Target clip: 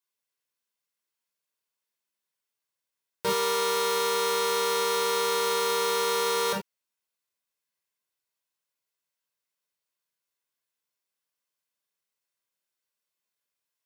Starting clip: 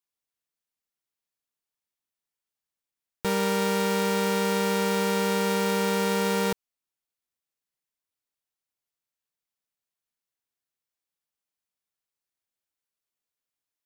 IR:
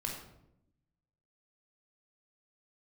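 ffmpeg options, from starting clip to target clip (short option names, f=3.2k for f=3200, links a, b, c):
-filter_complex "[0:a]highpass=f=400:p=1[a];[1:a]atrim=start_sample=2205,atrim=end_sample=3969[b];[a][b]afir=irnorm=-1:irlink=0,volume=3dB"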